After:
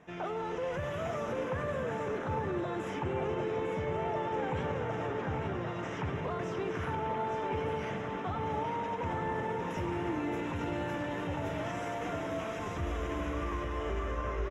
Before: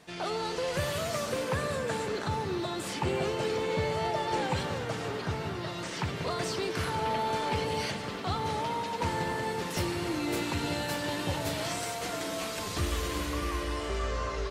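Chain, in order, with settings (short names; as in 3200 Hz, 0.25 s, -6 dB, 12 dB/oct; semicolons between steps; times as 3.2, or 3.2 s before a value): limiter -25.5 dBFS, peak gain reduction 6.5 dB; running mean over 10 samples; on a send: echo 0.852 s -7 dB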